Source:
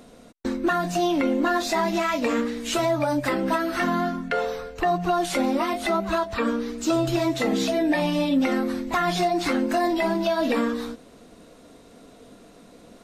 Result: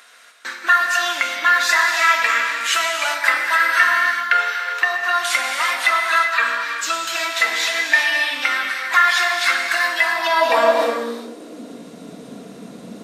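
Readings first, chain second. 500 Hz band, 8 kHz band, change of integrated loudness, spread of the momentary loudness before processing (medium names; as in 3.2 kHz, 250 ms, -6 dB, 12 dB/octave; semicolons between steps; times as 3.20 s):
-0.5 dB, +9.5 dB, +7.0 dB, 4 LU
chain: gated-style reverb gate 420 ms flat, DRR 2 dB; high-pass sweep 1.6 kHz -> 170 Hz, 10.02–11.97 s; trim +7 dB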